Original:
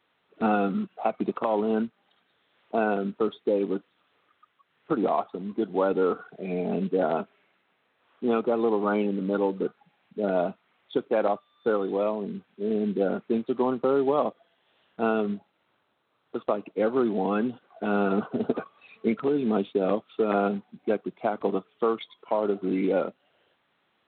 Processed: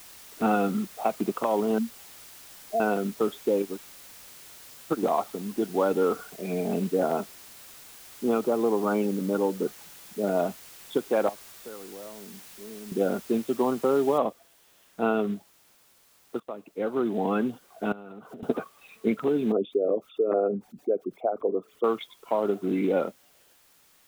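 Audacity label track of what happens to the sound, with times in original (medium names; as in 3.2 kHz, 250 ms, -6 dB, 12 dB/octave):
1.780000	2.800000	spectral contrast enhancement exponent 3.3
3.620000	5.030000	upward expansion 2.5:1, over -45 dBFS
6.890000	10.400000	treble shelf 2.3 kHz -7.5 dB
11.290000	12.920000	compression 2:1, threshold -53 dBFS
14.180000	14.180000	noise floor step -48 dB -61 dB
16.400000	17.280000	fade in, from -15.5 dB
17.920000	18.430000	compression 16:1, threshold -39 dBFS
19.520000	21.840000	resonances exaggerated exponent 2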